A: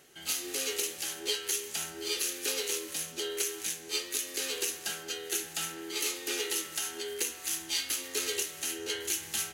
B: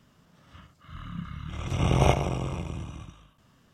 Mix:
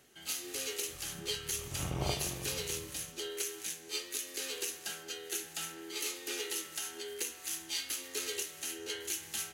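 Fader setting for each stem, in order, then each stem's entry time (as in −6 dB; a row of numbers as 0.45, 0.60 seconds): −5.0, −14.0 decibels; 0.00, 0.00 seconds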